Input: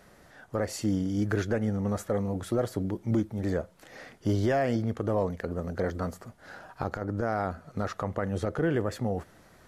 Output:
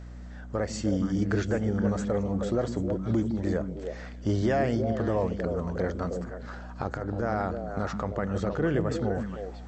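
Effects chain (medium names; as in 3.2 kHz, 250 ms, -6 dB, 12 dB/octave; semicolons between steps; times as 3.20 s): mains buzz 60 Hz, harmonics 5, -42 dBFS -8 dB/octave; brick-wall FIR low-pass 8.1 kHz; repeats whose band climbs or falls 157 ms, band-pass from 180 Hz, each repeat 1.4 oct, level -1 dB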